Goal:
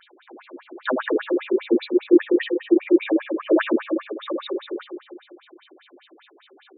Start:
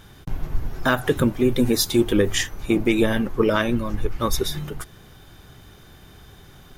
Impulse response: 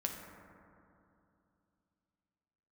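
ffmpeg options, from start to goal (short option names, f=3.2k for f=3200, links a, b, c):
-filter_complex "[0:a]asettb=1/sr,asplit=3[a][b][c];[a]atrim=end=1.784[d];[b]atrim=start=1.78:end=3.49,asetpts=PTS-STARTPTS,afade=t=in:d=0.004:c=qsin,afade=t=out:st=1.706:d=0.004:c=qsin,aemphasis=mode=reproduction:type=75kf[e];[c]atrim=start=3.486[f];[d][e]acrossfade=d=0.004:c1=hsin:c2=qsin[g];[g][f]acrossfade=d=0.004:c1=qsin:c2=hsin[h];[1:a]atrim=start_sample=2205,asetrate=79380,aresample=44100[i];[h][i]afir=irnorm=-1:irlink=0,afftfilt=real='re*between(b*sr/1024,330*pow(3300/330,0.5+0.5*sin(2*PI*5*pts/sr))/1.41,330*pow(3300/330,0.5+0.5*sin(2*PI*5*pts/sr))*1.41)':imag='im*between(b*sr/1024,330*pow(3300/330,0.5+0.5*sin(2*PI*5*pts/sr))/1.41,330*pow(3300/330,0.5+0.5*sin(2*PI*5*pts/sr))*1.41)':win_size=1024:overlap=0.75,volume=8dB"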